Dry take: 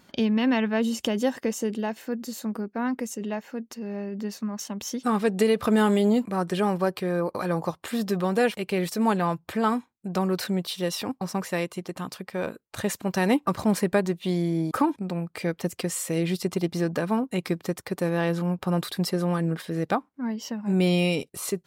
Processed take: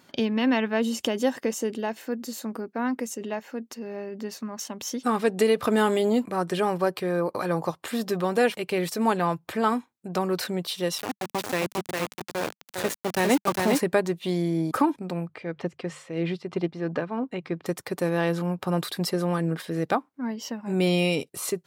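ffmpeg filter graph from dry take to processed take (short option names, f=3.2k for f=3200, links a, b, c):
-filter_complex "[0:a]asettb=1/sr,asplit=3[a][b][c];[a]atrim=end=10.984[d];[b]atrim=start=10.98:end=13.79,asetpts=PTS-STARTPTS,afade=t=in:d=0.004:c=qsin,afade=t=out:st=2.806:d=0.004:c=qsin,aecho=1:1:404:0.708,atrim=end_sample=123921,aeval=exprs='val(0)*gte(abs(val(0)),0.0447)':c=same[e];[c]atrim=start=13.786[f];[d][e]acrossfade=d=0.004:c1=hsin:c2=qsin[g];[g][f]acrossfade=d=0.004:c1=qsin:c2=hsin,asettb=1/sr,asplit=3[h][i][j];[h]atrim=end=15.274[k];[i]atrim=start=15.27:end=17.66,asetpts=PTS-STARTPTS,afade=t=in:d=0.004:c=qsin,afade=t=out:st=2.386:d=0.004:c=qsin,lowpass=3k,bandreject=f=50:t=h:w=6,bandreject=f=100:t=h:w=6,bandreject=f=150:t=h:w=6,tremolo=f=3:d=0.58[l];[j]atrim=start=17.656[m];[k][l]acrossfade=d=0.004:c1=hsin:c2=qsin[n];[n][m]acrossfade=d=0.004:c1=qsin:c2=hsin,highpass=110,equalizer=f=200:w=7.3:g=-9,volume=1dB"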